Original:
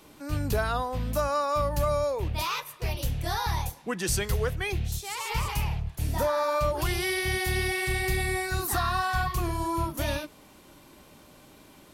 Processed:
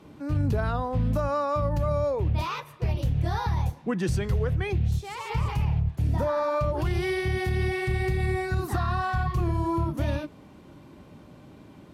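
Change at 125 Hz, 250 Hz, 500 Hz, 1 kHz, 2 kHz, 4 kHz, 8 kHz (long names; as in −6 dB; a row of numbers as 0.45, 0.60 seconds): +5.5, +4.5, +1.0, −1.5, −3.5, −7.5, −13.0 decibels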